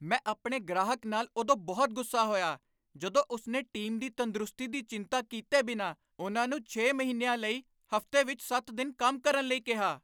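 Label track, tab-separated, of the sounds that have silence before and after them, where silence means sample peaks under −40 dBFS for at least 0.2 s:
3.020000	5.920000	sound
6.190000	7.590000	sound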